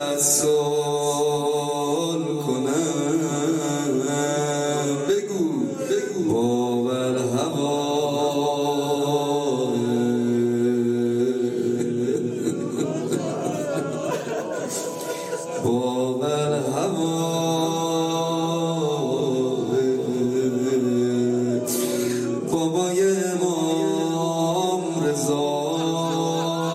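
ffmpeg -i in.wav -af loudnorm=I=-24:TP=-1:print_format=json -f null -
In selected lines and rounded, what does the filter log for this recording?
"input_i" : "-23.0",
"input_tp" : "-6.6",
"input_lra" : "2.3",
"input_thresh" : "-33.0",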